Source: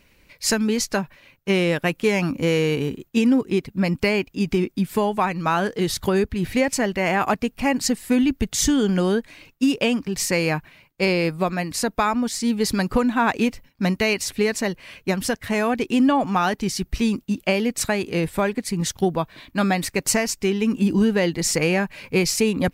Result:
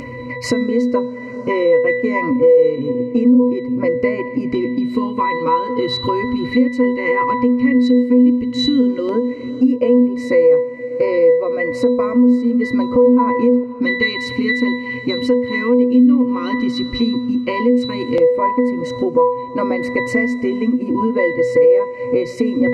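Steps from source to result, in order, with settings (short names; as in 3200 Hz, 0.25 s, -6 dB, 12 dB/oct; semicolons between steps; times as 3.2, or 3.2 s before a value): dynamic EQ 120 Hz, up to -8 dB, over -38 dBFS, Q 0.91; octave resonator B, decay 0.5 s; small resonant body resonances 390/3000 Hz, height 14 dB, ringing for 30 ms; LFO notch square 0.11 Hz 660–3600 Hz; low shelf 400 Hz -3.5 dB; notches 60/120/180/240 Hz; reverb RT60 3.7 s, pre-delay 6 ms, DRR 17.5 dB; upward compressor, threshold -32 dBFS; maximiser +27 dB; gain -4 dB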